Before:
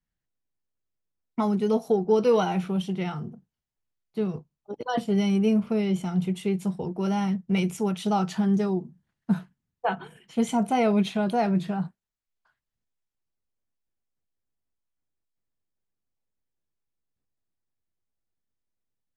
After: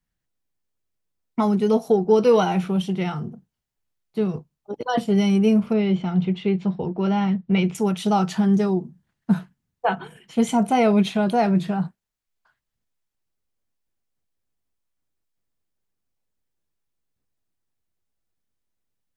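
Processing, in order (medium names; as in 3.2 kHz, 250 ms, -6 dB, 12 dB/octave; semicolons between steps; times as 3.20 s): 5.73–7.75 s: low-pass 4.2 kHz 24 dB/octave; trim +4.5 dB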